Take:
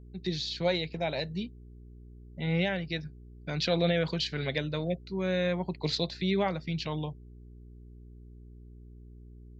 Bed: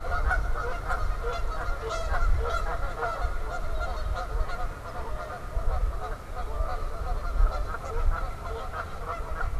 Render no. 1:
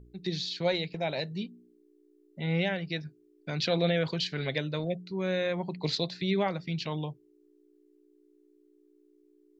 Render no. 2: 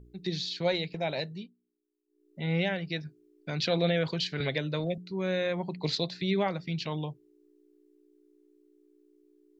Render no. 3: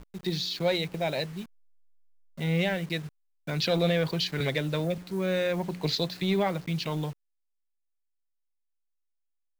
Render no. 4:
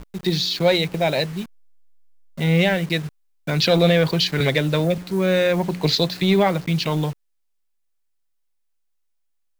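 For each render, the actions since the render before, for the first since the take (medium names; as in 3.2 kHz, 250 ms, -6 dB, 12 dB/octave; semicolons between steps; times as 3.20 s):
de-hum 60 Hz, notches 4
1.21–2.40 s: dip -21 dB, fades 0.34 s; 4.40–4.98 s: three bands compressed up and down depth 70%
send-on-delta sampling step -46.5 dBFS; in parallel at -7 dB: overload inside the chain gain 29.5 dB
trim +9 dB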